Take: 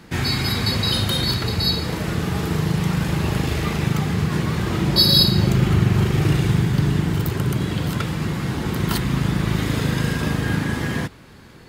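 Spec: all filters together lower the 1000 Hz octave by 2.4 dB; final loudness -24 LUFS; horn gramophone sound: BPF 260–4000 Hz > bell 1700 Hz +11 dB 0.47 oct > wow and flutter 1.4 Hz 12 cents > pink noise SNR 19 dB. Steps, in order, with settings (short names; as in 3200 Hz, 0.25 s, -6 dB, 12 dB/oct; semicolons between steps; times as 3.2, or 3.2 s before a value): BPF 260–4000 Hz; bell 1000 Hz -5.5 dB; bell 1700 Hz +11 dB 0.47 oct; wow and flutter 1.4 Hz 12 cents; pink noise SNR 19 dB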